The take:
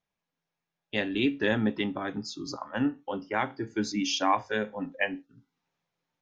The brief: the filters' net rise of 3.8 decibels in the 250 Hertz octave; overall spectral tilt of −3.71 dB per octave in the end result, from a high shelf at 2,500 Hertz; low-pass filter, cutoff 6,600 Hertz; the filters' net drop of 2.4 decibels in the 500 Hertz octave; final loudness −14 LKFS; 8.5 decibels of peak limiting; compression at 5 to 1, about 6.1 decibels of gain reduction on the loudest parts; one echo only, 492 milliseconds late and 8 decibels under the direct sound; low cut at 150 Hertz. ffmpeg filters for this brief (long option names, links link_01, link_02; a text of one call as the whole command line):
ffmpeg -i in.wav -af "highpass=150,lowpass=6600,equalizer=frequency=250:width_type=o:gain=6.5,equalizer=frequency=500:width_type=o:gain=-5.5,highshelf=frequency=2500:gain=7.5,acompressor=threshold=-25dB:ratio=5,alimiter=limit=-22dB:level=0:latency=1,aecho=1:1:492:0.398,volume=18.5dB" out.wav